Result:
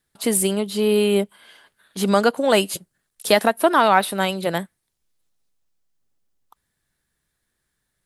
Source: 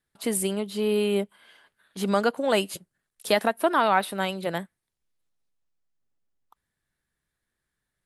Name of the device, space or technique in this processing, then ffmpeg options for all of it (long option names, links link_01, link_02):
exciter from parts: -filter_complex "[0:a]asplit=2[link_01][link_02];[link_02]highpass=3000,asoftclip=type=tanh:threshold=-33dB,volume=-5.5dB[link_03];[link_01][link_03]amix=inputs=2:normalize=0,volume=6dB"